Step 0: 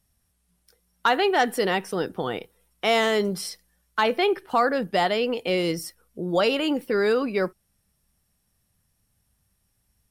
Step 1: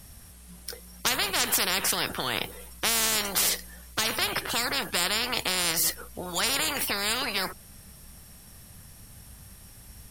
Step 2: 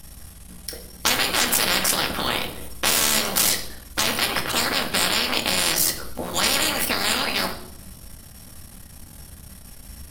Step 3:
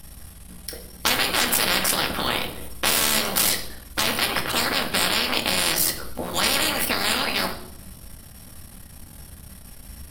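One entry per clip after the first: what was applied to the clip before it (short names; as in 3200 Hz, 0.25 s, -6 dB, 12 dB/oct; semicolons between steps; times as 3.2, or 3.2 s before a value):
spectral compressor 10:1
cycle switcher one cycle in 3, muted; on a send at -3.5 dB: reverb RT60 0.70 s, pre-delay 4 ms; on the sum: gain +5.5 dB
bell 6600 Hz -5.5 dB 0.45 oct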